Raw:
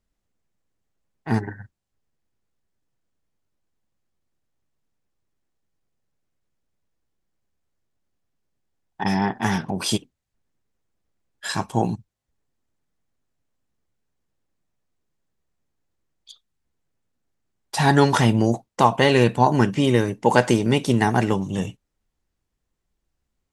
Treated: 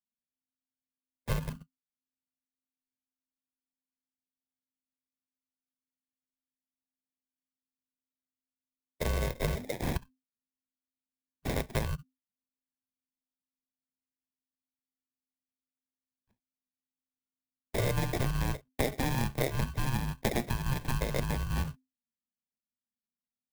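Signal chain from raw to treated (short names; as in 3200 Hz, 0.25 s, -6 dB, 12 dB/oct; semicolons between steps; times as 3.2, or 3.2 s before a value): gate -35 dBFS, range -28 dB; 9.55–9.96 HPF 490 Hz 24 dB/oct; sample-and-hold 28×; frequency shift -260 Hz; compressor 6:1, threshold -25 dBFS, peak gain reduction 14.5 dB; clock jitter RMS 0.032 ms; gain -2 dB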